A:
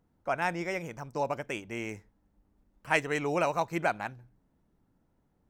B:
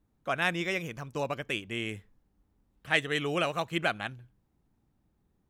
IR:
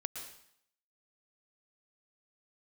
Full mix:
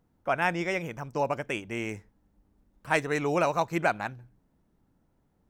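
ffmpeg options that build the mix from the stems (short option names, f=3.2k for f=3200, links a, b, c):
-filter_complex "[0:a]volume=1.5dB[a];[1:a]volume=-10dB[b];[a][b]amix=inputs=2:normalize=0"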